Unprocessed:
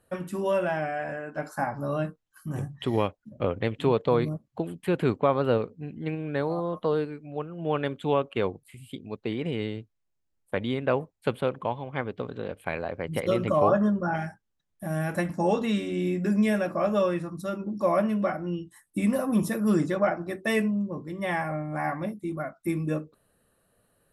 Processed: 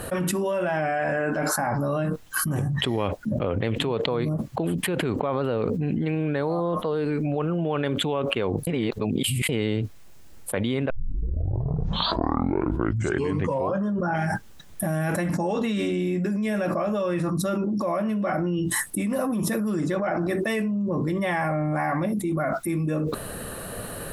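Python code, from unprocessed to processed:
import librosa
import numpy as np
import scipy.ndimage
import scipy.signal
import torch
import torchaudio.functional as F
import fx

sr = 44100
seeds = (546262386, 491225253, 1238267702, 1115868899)

y = fx.edit(x, sr, fx.reverse_span(start_s=8.67, length_s=0.82),
    fx.tape_start(start_s=10.9, length_s=2.99), tone=tone)
y = fx.env_flatten(y, sr, amount_pct=100)
y = F.gain(torch.from_numpy(y), -6.5).numpy()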